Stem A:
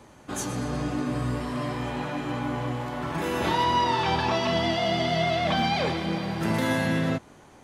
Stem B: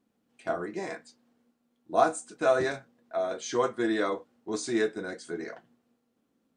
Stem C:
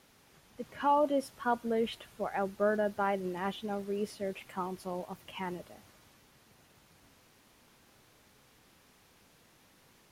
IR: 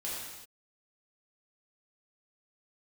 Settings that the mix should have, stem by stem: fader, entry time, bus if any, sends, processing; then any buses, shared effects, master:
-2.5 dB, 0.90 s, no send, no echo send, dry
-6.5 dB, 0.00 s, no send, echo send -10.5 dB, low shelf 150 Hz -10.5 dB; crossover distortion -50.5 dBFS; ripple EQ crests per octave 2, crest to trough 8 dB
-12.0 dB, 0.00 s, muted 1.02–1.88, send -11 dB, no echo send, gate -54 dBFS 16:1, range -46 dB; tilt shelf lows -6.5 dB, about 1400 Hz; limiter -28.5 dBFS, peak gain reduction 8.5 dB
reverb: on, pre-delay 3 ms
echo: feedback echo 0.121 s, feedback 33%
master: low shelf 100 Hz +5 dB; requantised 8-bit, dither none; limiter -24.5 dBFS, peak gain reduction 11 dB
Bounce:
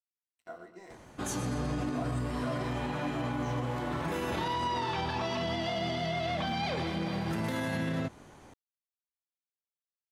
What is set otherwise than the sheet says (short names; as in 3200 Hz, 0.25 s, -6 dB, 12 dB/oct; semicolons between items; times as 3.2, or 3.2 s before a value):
stem B -6.5 dB -> -15.0 dB; stem C: muted; reverb: off; master: missing requantised 8-bit, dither none